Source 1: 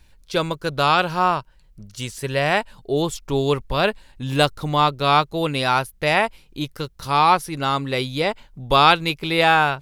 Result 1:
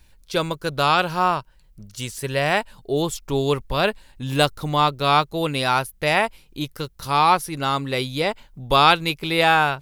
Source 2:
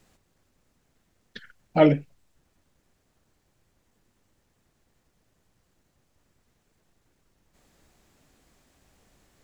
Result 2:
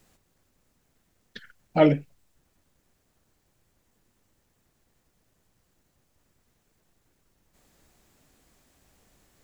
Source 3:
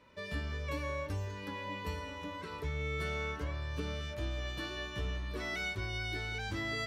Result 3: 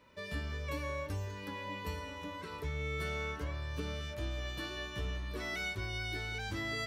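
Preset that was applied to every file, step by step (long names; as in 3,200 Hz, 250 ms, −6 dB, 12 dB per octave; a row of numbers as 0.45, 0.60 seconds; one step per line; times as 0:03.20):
high-shelf EQ 10,000 Hz +7.5 dB
level −1 dB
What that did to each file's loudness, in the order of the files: −1.0, −1.0, −1.0 LU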